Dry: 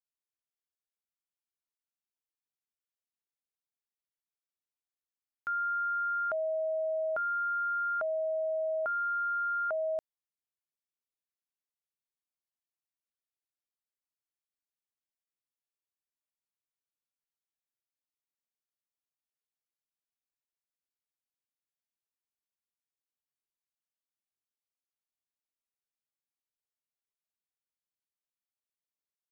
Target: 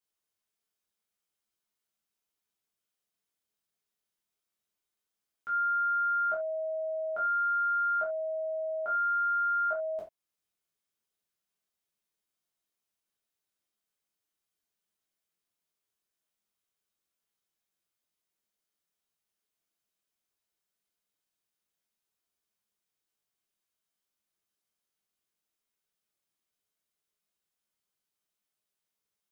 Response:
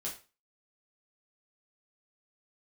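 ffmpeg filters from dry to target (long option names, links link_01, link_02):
-filter_complex "[0:a]alimiter=level_in=12.5dB:limit=-24dB:level=0:latency=1:release=311,volume=-12.5dB[link_01];[1:a]atrim=start_sample=2205,atrim=end_sample=4410[link_02];[link_01][link_02]afir=irnorm=-1:irlink=0,acontrast=90"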